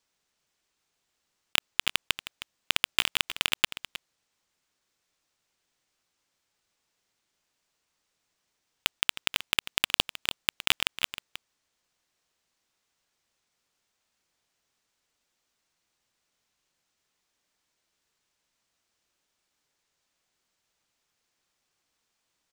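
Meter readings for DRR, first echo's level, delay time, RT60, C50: none, -14.0 dB, 0.313 s, none, none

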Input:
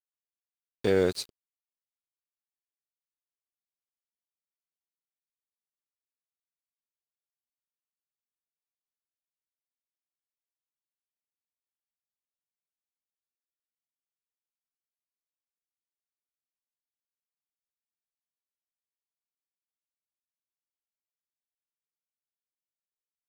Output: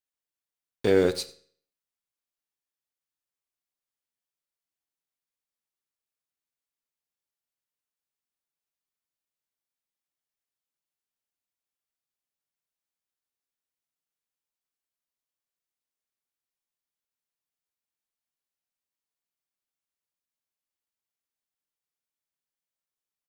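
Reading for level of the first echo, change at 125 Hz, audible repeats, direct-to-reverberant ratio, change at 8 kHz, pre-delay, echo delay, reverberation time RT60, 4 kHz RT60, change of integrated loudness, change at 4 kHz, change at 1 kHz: -21.5 dB, +1.0 dB, 1, 11.0 dB, +2.0 dB, 7 ms, 91 ms, 0.55 s, 0.45 s, +3.0 dB, +2.5 dB, +2.0 dB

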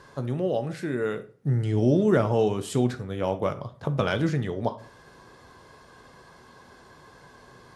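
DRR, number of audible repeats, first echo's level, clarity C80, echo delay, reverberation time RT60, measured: 9.0 dB, none, none, 20.0 dB, none, 0.40 s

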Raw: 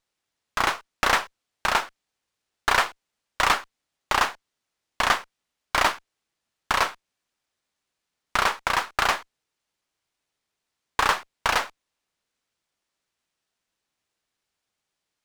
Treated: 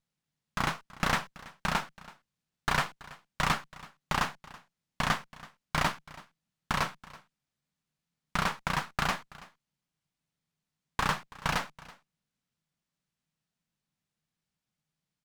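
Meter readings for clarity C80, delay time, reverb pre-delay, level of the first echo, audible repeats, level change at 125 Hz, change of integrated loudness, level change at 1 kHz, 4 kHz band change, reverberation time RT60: none, 0.329 s, none, -20.5 dB, 1, +6.5 dB, -7.5 dB, -8.0 dB, -8.0 dB, none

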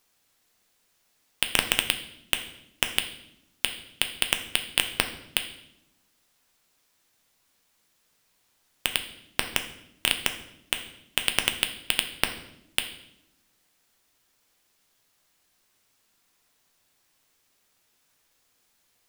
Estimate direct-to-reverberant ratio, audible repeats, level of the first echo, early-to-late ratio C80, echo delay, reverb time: 6.0 dB, none, none, 13.0 dB, none, 0.80 s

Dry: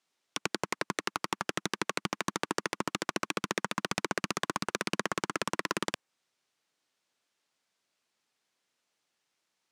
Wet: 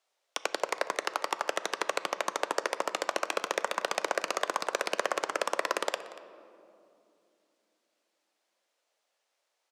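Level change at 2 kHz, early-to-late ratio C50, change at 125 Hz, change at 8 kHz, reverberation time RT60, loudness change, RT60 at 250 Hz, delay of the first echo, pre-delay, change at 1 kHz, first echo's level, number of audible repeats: +1.0 dB, 13.0 dB, under -15 dB, 0.0 dB, 2.7 s, +2.0 dB, 4.0 s, 0.236 s, 7 ms, +3.5 dB, -19.5 dB, 1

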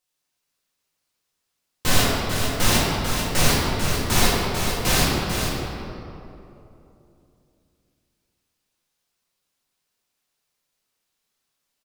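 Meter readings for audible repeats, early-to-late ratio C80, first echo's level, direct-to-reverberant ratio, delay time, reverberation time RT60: 1, -1.5 dB, -5.5 dB, -9.0 dB, 0.444 s, 3.0 s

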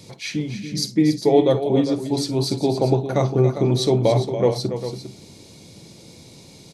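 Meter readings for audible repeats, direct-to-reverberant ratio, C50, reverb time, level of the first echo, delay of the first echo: 3, none, none, none, -16.0 dB, 52 ms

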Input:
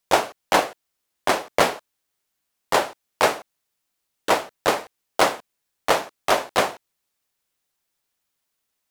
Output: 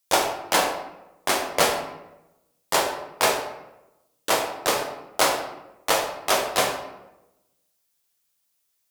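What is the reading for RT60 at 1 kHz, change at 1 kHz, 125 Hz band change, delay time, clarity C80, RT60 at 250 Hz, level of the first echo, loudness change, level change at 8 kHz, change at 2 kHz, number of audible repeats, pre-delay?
0.90 s, -2.0 dB, -2.0 dB, none, 8.5 dB, 1.1 s, none, -1.0 dB, +5.0 dB, -1.0 dB, none, 9 ms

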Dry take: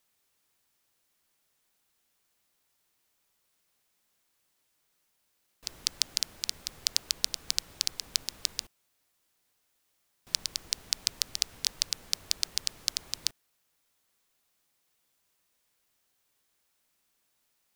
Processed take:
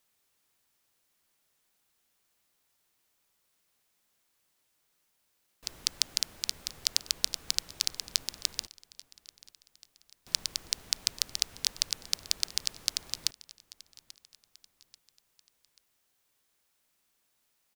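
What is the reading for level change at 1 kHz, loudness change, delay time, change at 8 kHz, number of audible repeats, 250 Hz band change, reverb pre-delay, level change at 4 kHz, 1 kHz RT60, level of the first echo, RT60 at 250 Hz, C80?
0.0 dB, 0.0 dB, 0.837 s, 0.0 dB, 3, 0.0 dB, none, 0.0 dB, none, -21.0 dB, none, none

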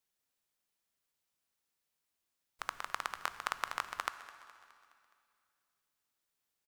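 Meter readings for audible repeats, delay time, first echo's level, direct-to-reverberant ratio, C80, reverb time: 4, 0.209 s, -18.0 dB, 10.5 dB, 12.0 dB, 2.4 s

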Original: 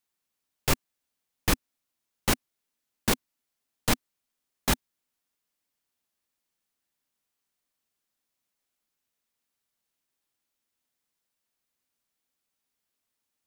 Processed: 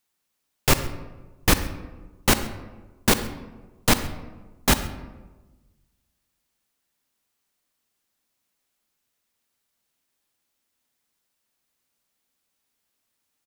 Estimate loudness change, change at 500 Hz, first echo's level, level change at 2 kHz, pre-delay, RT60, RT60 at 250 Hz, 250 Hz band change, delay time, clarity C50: +6.0 dB, +6.5 dB, -21.5 dB, +6.5 dB, 39 ms, 1.2 s, 1.4 s, +6.5 dB, 0.134 s, 11.0 dB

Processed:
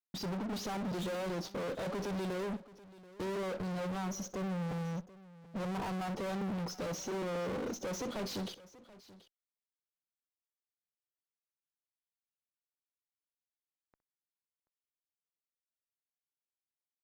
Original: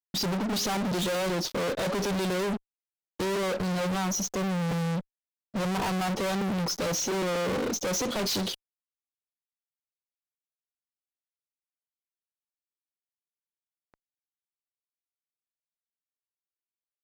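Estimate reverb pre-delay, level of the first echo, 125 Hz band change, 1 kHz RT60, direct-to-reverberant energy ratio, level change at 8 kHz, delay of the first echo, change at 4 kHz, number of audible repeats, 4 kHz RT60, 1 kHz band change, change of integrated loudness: none, -18.5 dB, -8.0 dB, none, none, -14.5 dB, 63 ms, -13.5 dB, 2, none, -9.0 dB, -9.0 dB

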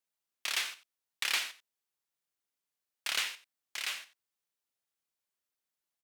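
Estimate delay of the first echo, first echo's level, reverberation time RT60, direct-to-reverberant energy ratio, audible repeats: 90 ms, -16.0 dB, none, none, 1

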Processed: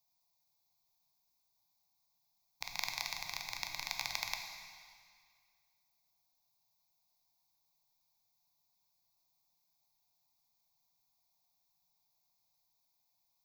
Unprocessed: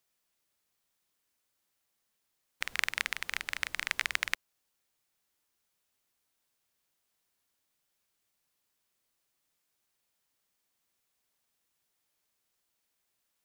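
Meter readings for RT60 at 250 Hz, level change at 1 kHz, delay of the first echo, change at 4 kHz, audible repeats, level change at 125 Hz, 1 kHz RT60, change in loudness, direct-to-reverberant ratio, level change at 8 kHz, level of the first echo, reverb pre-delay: 2.0 s, -2.0 dB, none, -2.5 dB, none, n/a, 2.0 s, -6.0 dB, 3.0 dB, -2.0 dB, none, 8 ms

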